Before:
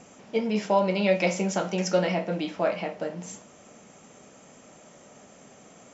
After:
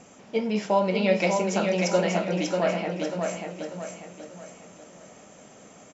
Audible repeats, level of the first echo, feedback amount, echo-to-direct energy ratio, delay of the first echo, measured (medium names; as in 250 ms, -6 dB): 4, -4.5 dB, 40%, -3.5 dB, 591 ms